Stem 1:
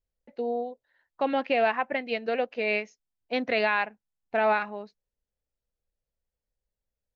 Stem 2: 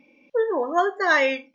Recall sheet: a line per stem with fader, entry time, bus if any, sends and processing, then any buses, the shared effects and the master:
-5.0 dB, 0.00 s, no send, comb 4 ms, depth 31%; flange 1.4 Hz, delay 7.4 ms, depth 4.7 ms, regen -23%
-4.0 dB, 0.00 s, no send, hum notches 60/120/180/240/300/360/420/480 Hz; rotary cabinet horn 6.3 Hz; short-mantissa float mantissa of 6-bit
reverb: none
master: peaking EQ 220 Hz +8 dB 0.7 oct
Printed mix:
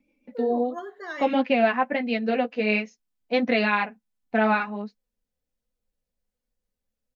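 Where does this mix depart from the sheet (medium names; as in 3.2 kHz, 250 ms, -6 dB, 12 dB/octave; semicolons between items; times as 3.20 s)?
stem 1 -5.0 dB -> +5.5 dB; stem 2 -4.0 dB -> -13.0 dB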